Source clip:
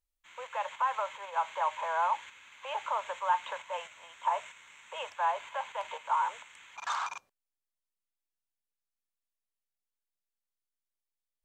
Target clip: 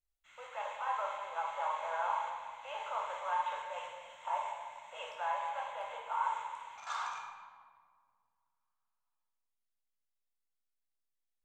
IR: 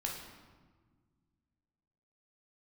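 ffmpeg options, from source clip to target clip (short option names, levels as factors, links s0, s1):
-filter_complex "[0:a]asettb=1/sr,asplit=3[s0][s1][s2];[s0]atrim=end=5.654[s3];[s1]atrim=start=5.65:end=6.24,asetpts=PTS-STARTPTS,afade=t=in:d=0.004:c=qsin,afade=t=out:st=0.586:d=0.004:c=qsin,equalizer=f=5300:w=1.3:g=-5[s4];[s2]atrim=start=6.236[s5];[s3][s4]acrossfade=d=0.004:c1=hsin:c2=qsin[s6];[s6][s5]acrossfade=d=0.004:c1=qsin:c2=hsin[s7];[1:a]atrim=start_sample=2205,asetrate=36603,aresample=44100[s8];[s7][s8]afir=irnorm=-1:irlink=0,volume=0.447"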